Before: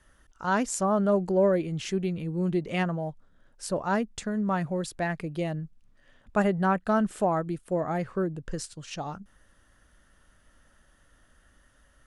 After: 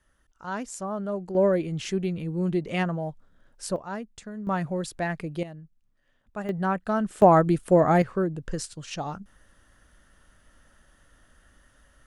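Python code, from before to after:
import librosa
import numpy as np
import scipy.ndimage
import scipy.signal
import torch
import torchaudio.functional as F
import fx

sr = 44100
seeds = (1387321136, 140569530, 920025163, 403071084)

y = fx.gain(x, sr, db=fx.steps((0.0, -7.0), (1.35, 1.0), (3.76, -8.0), (4.47, 0.5), (5.43, -10.0), (6.49, -1.5), (7.22, 9.5), (8.02, 2.5)))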